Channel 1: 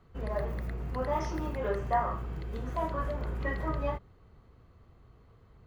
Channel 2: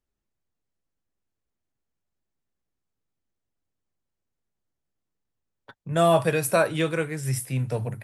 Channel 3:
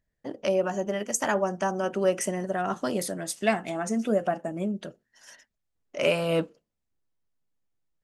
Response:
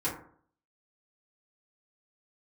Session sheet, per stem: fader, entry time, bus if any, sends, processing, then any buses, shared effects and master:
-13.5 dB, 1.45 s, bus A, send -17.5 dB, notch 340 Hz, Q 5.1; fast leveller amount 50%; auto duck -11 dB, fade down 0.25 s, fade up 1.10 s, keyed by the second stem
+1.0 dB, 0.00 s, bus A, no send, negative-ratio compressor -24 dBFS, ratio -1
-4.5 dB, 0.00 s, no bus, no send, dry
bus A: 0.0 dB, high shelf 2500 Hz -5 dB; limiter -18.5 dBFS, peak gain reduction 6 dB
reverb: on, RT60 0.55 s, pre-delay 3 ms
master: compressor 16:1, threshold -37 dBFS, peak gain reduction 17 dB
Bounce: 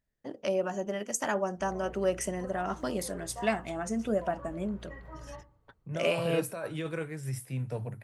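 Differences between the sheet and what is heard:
stem 1: missing fast leveller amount 50%; stem 2 +1.0 dB -> -9.5 dB; master: missing compressor 16:1, threshold -37 dBFS, peak gain reduction 17 dB

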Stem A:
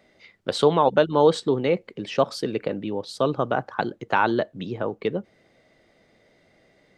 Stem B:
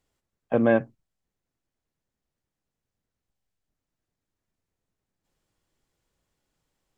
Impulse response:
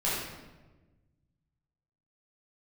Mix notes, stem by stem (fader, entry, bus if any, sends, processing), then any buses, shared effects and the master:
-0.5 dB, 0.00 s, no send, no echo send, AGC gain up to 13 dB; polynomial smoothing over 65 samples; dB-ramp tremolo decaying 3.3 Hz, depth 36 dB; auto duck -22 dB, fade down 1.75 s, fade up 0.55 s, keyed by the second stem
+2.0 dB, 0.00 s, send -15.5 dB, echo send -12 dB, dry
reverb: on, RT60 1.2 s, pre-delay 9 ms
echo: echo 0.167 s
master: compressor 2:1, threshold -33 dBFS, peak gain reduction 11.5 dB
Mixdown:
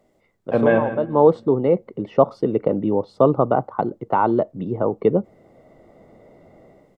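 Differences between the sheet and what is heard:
stem A: missing dB-ramp tremolo decaying 3.3 Hz, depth 36 dB; master: missing compressor 2:1, threshold -33 dBFS, peak gain reduction 11.5 dB

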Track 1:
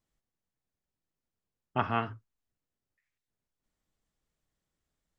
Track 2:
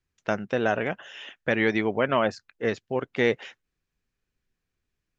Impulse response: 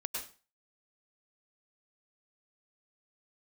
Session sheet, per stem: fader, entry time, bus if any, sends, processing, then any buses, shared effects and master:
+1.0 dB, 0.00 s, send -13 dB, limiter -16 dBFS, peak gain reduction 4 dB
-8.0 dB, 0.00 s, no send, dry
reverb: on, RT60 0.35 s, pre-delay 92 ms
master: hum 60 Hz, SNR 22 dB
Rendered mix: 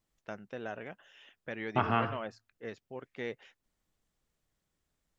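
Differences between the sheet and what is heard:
stem 2 -8.0 dB -> -16.0 dB; master: missing hum 60 Hz, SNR 22 dB

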